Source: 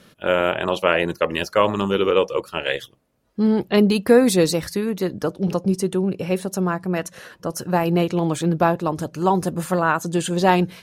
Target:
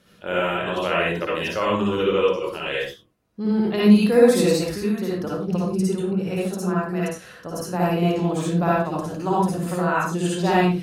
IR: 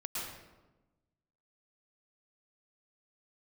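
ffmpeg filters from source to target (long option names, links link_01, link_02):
-filter_complex "[1:a]atrim=start_sample=2205,afade=type=out:start_time=0.41:duration=0.01,atrim=end_sample=18522,asetrate=88200,aresample=44100[link_01];[0:a][link_01]afir=irnorm=-1:irlink=0,volume=1.5dB"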